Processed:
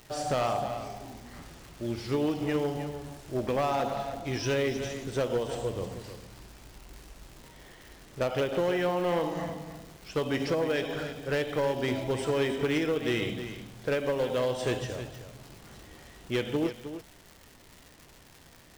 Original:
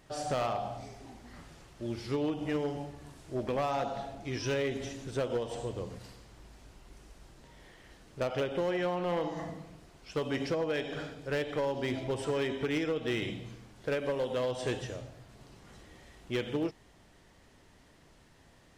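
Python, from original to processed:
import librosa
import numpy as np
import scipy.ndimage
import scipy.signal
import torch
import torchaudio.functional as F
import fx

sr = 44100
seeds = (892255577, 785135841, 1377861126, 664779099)

p1 = fx.dmg_crackle(x, sr, seeds[0], per_s=320.0, level_db=-44.0)
p2 = fx.quant_float(p1, sr, bits=2)
p3 = p1 + (p2 * 10.0 ** (-6.0 / 20.0))
y = p3 + 10.0 ** (-11.0 / 20.0) * np.pad(p3, (int(311 * sr / 1000.0), 0))[:len(p3)]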